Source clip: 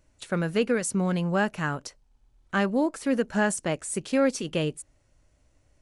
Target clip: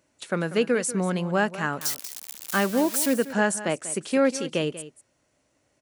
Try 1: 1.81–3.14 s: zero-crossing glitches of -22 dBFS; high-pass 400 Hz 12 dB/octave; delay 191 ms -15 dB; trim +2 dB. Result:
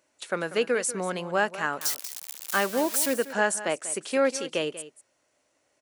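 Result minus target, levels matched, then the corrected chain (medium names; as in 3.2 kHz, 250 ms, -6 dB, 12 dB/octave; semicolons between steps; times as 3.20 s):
250 Hz band -5.5 dB
1.81–3.14 s: zero-crossing glitches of -22 dBFS; high-pass 190 Hz 12 dB/octave; delay 191 ms -15 dB; trim +2 dB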